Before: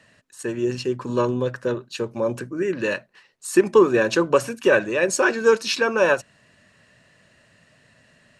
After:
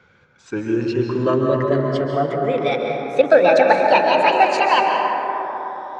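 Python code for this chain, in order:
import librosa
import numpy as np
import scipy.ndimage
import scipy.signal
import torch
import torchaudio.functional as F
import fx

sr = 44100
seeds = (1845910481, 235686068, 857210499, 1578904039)

y = fx.speed_glide(x, sr, from_pct=80, to_pct=200)
y = scipy.ndimage.gaussian_filter1d(y, 1.8, mode='constant')
y = fx.rev_plate(y, sr, seeds[0], rt60_s=4.2, hf_ratio=0.25, predelay_ms=120, drr_db=0.5)
y = F.gain(torch.from_numpy(y), 2.0).numpy()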